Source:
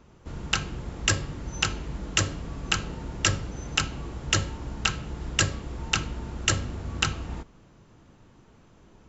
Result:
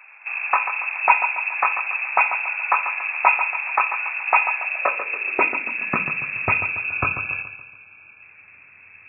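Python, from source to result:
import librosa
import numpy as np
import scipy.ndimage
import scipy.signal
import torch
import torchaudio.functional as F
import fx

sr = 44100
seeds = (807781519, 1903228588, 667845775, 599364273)

p1 = fx.spec_erase(x, sr, start_s=6.6, length_s=1.62, low_hz=410.0, high_hz=850.0)
p2 = fx.freq_invert(p1, sr, carrier_hz=2600)
p3 = p2 + fx.echo_feedback(p2, sr, ms=141, feedback_pct=47, wet_db=-10, dry=0)
p4 = fx.filter_sweep_highpass(p3, sr, from_hz=840.0, to_hz=94.0, start_s=4.54, end_s=6.6, q=3.9)
y = p4 * 10.0 ** (6.0 / 20.0)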